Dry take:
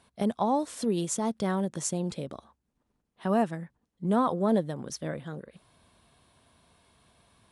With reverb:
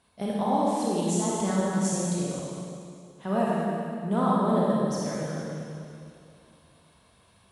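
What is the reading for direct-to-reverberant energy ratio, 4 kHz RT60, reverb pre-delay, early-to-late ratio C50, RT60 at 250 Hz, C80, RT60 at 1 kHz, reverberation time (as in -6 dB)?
-6.0 dB, 2.2 s, 26 ms, -4.0 dB, 2.7 s, -1.5 dB, 2.4 s, 2.5 s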